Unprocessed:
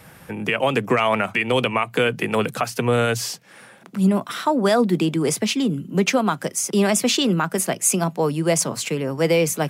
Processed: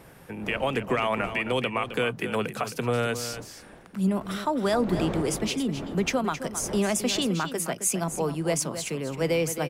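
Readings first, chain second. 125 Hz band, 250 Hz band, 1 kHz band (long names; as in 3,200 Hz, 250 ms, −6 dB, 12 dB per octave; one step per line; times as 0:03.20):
−6.5 dB, −6.5 dB, −6.5 dB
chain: wind on the microphone 530 Hz −35 dBFS
single-tap delay 265 ms −11 dB
level −7 dB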